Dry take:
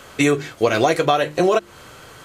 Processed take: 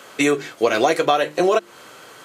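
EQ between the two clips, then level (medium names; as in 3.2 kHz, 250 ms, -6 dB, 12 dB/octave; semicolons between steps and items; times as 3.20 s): high-pass 240 Hz 12 dB/octave; 0.0 dB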